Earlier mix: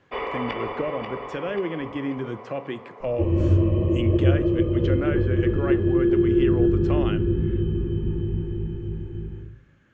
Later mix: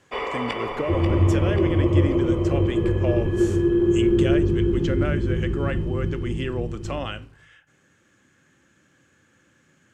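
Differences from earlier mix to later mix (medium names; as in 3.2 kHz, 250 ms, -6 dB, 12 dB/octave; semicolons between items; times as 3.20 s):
second sound: entry -2.30 s; master: remove distance through air 210 m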